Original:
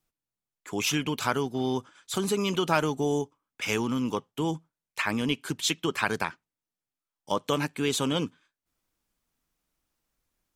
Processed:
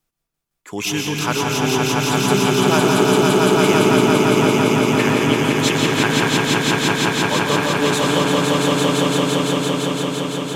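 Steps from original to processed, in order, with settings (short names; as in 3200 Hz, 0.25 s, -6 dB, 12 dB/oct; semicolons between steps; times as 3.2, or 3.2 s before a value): swelling echo 0.17 s, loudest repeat 5, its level -3 dB; reverb RT60 1.2 s, pre-delay 0.115 s, DRR 2 dB; gain +4 dB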